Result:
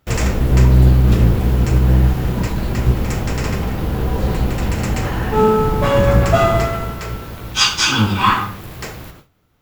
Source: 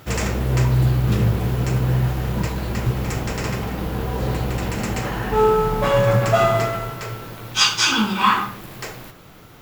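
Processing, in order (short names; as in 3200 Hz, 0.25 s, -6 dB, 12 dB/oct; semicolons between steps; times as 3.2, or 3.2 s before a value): octaver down 1 oct, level +2 dB; gate with hold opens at -30 dBFS; gain +2 dB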